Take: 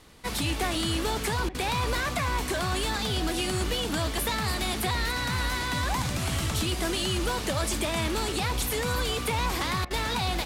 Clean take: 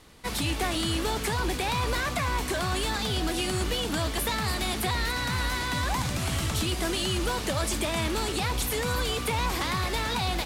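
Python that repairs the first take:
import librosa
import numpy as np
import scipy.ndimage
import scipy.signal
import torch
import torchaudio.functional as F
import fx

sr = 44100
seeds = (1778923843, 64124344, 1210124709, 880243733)

y = fx.fix_interpolate(x, sr, at_s=(1.49, 9.85), length_ms=55.0)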